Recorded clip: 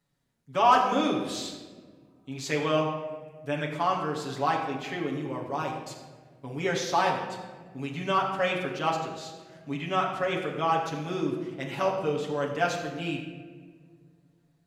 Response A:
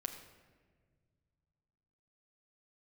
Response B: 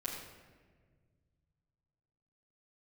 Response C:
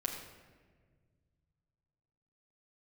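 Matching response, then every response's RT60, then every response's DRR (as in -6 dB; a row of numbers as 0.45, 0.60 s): C; not exponential, 1.6 s, 1.6 s; 2.5, -9.0, -2.5 dB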